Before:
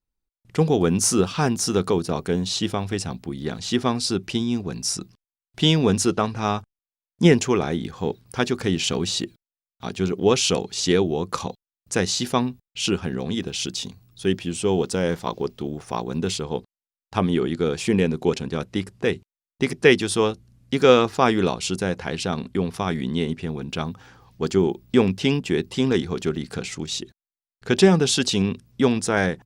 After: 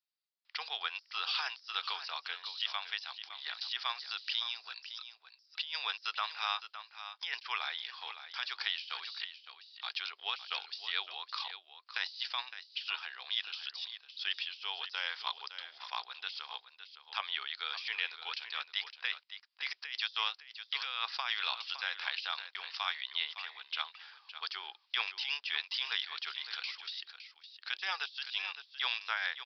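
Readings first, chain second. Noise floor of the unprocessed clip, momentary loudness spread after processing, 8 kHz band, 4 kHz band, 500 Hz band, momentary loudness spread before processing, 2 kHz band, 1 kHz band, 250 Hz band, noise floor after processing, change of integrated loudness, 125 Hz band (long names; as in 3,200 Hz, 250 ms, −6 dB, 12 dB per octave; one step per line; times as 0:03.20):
below −85 dBFS, 9 LU, below −30 dB, −6.0 dB, −37.0 dB, 12 LU, −7.0 dB, −12.5 dB, below −40 dB, −69 dBFS, −14.0 dB, below −40 dB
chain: high-pass filter 880 Hz 24 dB per octave
first difference
compressor whose output falls as the input rises −40 dBFS, ratio −1
on a send: single-tap delay 562 ms −11.5 dB
on the sum: downsampling to 11,025 Hz
level +3 dB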